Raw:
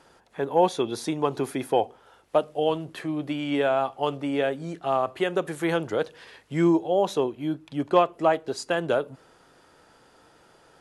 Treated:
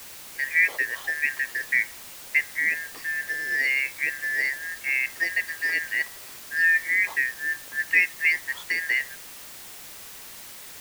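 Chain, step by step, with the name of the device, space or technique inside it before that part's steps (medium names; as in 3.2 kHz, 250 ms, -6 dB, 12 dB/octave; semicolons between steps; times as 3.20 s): split-band scrambled radio (four frequency bands reordered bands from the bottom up 3142; band-pass 360–2900 Hz; white noise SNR 15 dB)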